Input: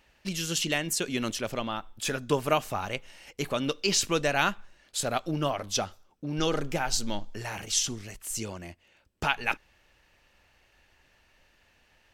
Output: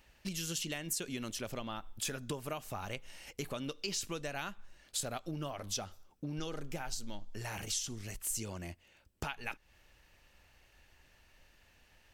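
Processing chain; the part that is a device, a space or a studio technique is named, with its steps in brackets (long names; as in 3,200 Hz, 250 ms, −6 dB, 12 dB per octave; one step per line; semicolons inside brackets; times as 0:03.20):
ASMR close-microphone chain (low-shelf EQ 150 Hz +6 dB; downward compressor 6 to 1, threshold −34 dBFS, peak gain reduction 14.5 dB; high-shelf EQ 7,000 Hz +7.5 dB)
level −3 dB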